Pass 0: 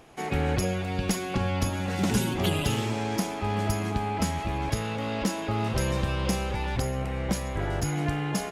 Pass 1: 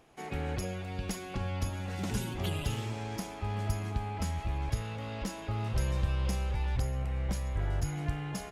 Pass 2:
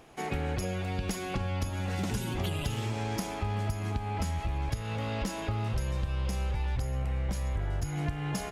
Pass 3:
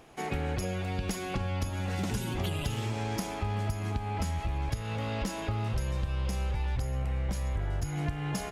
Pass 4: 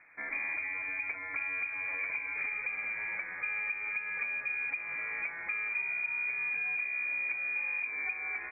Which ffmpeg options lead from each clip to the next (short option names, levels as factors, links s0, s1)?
-af "asubboost=boost=4:cutoff=110,volume=0.355"
-af "acompressor=threshold=0.0178:ratio=6,volume=2.24"
-af anull
-af "lowpass=f=2100:t=q:w=0.5098,lowpass=f=2100:t=q:w=0.6013,lowpass=f=2100:t=q:w=0.9,lowpass=f=2100:t=q:w=2.563,afreqshift=-2500,volume=0.631"